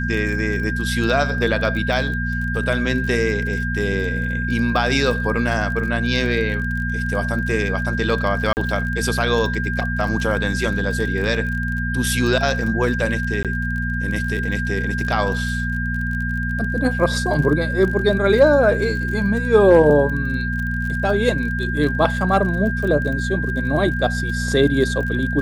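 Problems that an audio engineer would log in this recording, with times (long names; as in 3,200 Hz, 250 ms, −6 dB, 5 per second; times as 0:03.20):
surface crackle 29 per second −27 dBFS
mains hum 60 Hz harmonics 4 −24 dBFS
whistle 1,600 Hz −25 dBFS
0:08.53–0:08.57: drop-out 39 ms
0:13.43–0:13.45: drop-out 17 ms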